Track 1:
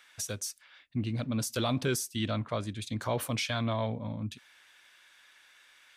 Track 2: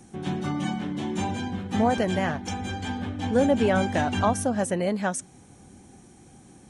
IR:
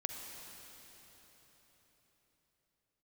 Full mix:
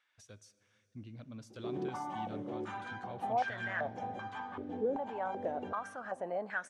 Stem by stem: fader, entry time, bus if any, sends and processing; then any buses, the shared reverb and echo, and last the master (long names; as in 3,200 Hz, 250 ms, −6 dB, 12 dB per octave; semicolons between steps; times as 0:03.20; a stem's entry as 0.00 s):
−18.0 dB, 0.00 s, send −10 dB, low-pass filter 7,700 Hz 12 dB per octave; high-shelf EQ 3,700 Hz −8.5 dB
+2.5 dB, 1.50 s, send −19.5 dB, brickwall limiter −21 dBFS, peak gain reduction 10.5 dB; band-pass on a step sequencer 2.6 Hz 420–1,600 Hz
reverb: on, RT60 4.6 s, pre-delay 40 ms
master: no processing